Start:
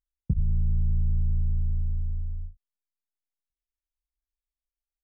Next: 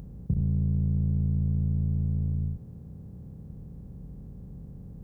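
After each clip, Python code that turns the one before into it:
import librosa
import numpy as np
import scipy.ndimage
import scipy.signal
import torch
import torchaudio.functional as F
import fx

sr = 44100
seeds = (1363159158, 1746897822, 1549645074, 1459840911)

y = fx.bin_compress(x, sr, power=0.2)
y = scipy.signal.sosfilt(scipy.signal.butter(2, 43.0, 'highpass', fs=sr, output='sos'), y)
y = fx.tilt_eq(y, sr, slope=2.0)
y = F.gain(torch.from_numpy(y), 2.5).numpy()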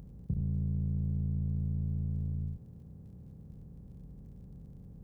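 y = fx.dmg_crackle(x, sr, seeds[0], per_s=52.0, level_db=-55.0)
y = F.gain(torch.from_numpy(y), -6.5).numpy()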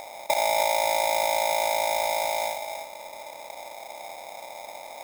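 y = fx.mod_noise(x, sr, seeds[1], snr_db=15)
y = y + 10.0 ** (-9.0 / 20.0) * np.pad(y, (int(296 * sr / 1000.0), 0))[:len(y)]
y = y * np.sign(np.sin(2.0 * np.pi * 740.0 * np.arange(len(y)) / sr))
y = F.gain(torch.from_numpy(y), 8.0).numpy()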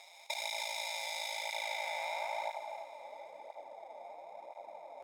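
y = fx.filter_sweep_bandpass(x, sr, from_hz=3900.0, to_hz=530.0, start_s=1.29, end_s=3.29, q=0.89)
y = y + 10.0 ** (-20.5 / 20.0) * np.pad(y, (int(1071 * sr / 1000.0), 0))[:len(y)]
y = fx.flanger_cancel(y, sr, hz=0.99, depth_ms=6.9)
y = F.gain(torch.from_numpy(y), -4.0).numpy()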